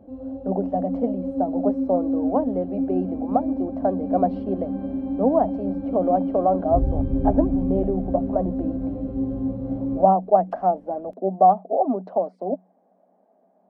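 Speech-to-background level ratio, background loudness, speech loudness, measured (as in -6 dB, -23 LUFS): 3.0 dB, -27.0 LUFS, -24.0 LUFS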